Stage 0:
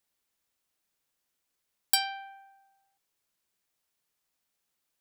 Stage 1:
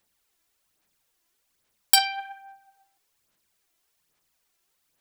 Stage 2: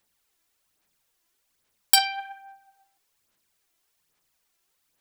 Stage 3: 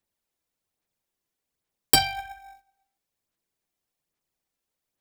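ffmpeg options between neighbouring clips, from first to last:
-af "aphaser=in_gain=1:out_gain=1:delay=3:decay=0.51:speed=1.2:type=sinusoidal,volume=6dB"
-af "bandreject=f=50.15:t=h:w=4,bandreject=f=100.3:t=h:w=4,bandreject=f=150.45:t=h:w=4,bandreject=f=200.6:t=h:w=4,bandreject=f=250.75:t=h:w=4,bandreject=f=300.9:t=h:w=4,bandreject=f=351.05:t=h:w=4,bandreject=f=401.2:t=h:w=4,bandreject=f=451.35:t=h:w=4,bandreject=f=501.5:t=h:w=4,bandreject=f=551.65:t=h:w=4,bandreject=f=601.8:t=h:w=4,bandreject=f=651.95:t=h:w=4,bandreject=f=702.1:t=h:w=4,bandreject=f=752.25:t=h:w=4"
-filter_complex "[0:a]agate=range=-11dB:threshold=-53dB:ratio=16:detection=peak,asplit=2[a][b];[b]acrusher=samples=29:mix=1:aa=0.000001,volume=-8.5dB[c];[a][c]amix=inputs=2:normalize=0,volume=-1dB"

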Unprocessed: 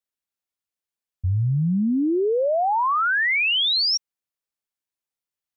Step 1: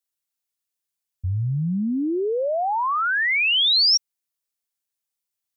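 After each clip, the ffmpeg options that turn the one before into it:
-af "highshelf=f=3.6k:g=10,volume=-2.5dB"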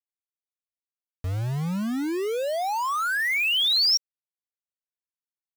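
-af "aeval=exprs='val(0)*gte(abs(val(0)),0.0422)':c=same,volume=-3.5dB"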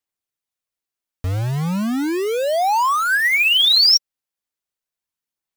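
-af "aphaser=in_gain=1:out_gain=1:delay=3.8:decay=0.22:speed=0.36:type=sinusoidal,volume=7.5dB"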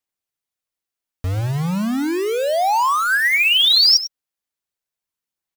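-af "aecho=1:1:98:0.211"

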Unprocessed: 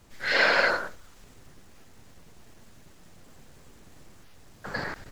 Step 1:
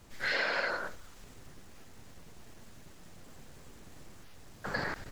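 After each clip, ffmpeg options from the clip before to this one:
-af "acompressor=threshold=-29dB:ratio=6"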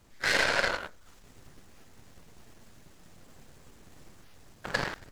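-af "aeval=exprs='0.126*(cos(1*acos(clip(val(0)/0.126,-1,1)))-cos(1*PI/2))+0.0112*(cos(3*acos(clip(val(0)/0.126,-1,1)))-cos(3*PI/2))+0.01*(cos(6*acos(clip(val(0)/0.126,-1,1)))-cos(6*PI/2))+0.00891*(cos(7*acos(clip(val(0)/0.126,-1,1)))-cos(7*PI/2))':c=same,volume=8.5dB"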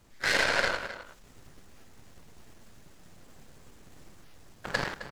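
-filter_complex "[0:a]asplit=2[a][b];[b]adelay=262.4,volume=-12dB,highshelf=f=4k:g=-5.9[c];[a][c]amix=inputs=2:normalize=0"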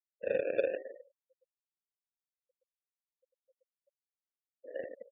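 -filter_complex "[0:a]acrusher=samples=34:mix=1:aa=0.000001:lfo=1:lforange=20.4:lforate=0.51,asplit=3[a][b][c];[a]bandpass=f=530:t=q:w=8,volume=0dB[d];[b]bandpass=f=1.84k:t=q:w=8,volume=-6dB[e];[c]bandpass=f=2.48k:t=q:w=8,volume=-9dB[f];[d][e][f]amix=inputs=3:normalize=0,afftfilt=real='re*gte(hypot(re,im),0.00562)':imag='im*gte(hypot(re,im),0.00562)':win_size=1024:overlap=0.75,volume=3dB"

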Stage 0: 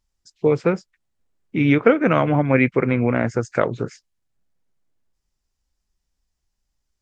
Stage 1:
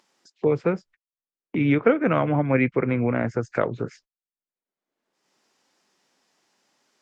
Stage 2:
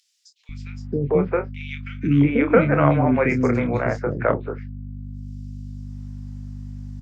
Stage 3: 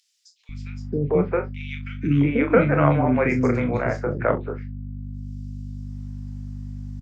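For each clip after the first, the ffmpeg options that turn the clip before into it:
-filter_complex "[0:a]aemphasis=mode=reproduction:type=50fm,agate=range=-38dB:threshold=-45dB:ratio=16:detection=peak,acrossover=split=230[a][b];[b]acompressor=mode=upward:threshold=-20dB:ratio=2.5[c];[a][c]amix=inputs=2:normalize=0,volume=-4dB"
-filter_complex "[0:a]aeval=exprs='val(0)+0.0178*(sin(2*PI*50*n/s)+sin(2*PI*2*50*n/s)/2+sin(2*PI*3*50*n/s)/3+sin(2*PI*4*50*n/s)/4+sin(2*PI*5*50*n/s)/5)':c=same,asplit=2[a][b];[b]adelay=28,volume=-8dB[c];[a][c]amix=inputs=2:normalize=0,acrossover=split=360|2700[d][e][f];[d]adelay=490[g];[e]adelay=670[h];[g][h][f]amix=inputs=3:normalize=0,volume=4dB"
-filter_complex "[0:a]asplit=2[a][b];[b]adelay=40,volume=-11dB[c];[a][c]amix=inputs=2:normalize=0,volume=-1.5dB"

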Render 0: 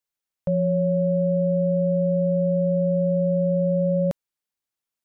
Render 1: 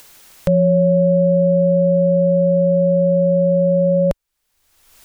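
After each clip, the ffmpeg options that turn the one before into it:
-af "asubboost=boost=9:cutoff=59,acompressor=mode=upward:threshold=-28dB:ratio=2.5,volume=8.5dB"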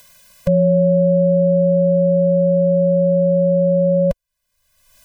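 -af "afftfilt=real='re*eq(mod(floor(b*sr/1024/240),2),0)':imag='im*eq(mod(floor(b*sr/1024/240),2),0)':win_size=1024:overlap=0.75"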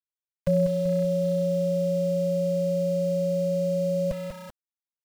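-af "aecho=1:1:192|384|576|768|960:0.422|0.198|0.0932|0.0438|0.0206,aeval=exprs='val(0)*gte(abs(val(0)),0.0299)':c=same,volume=-7.5dB"

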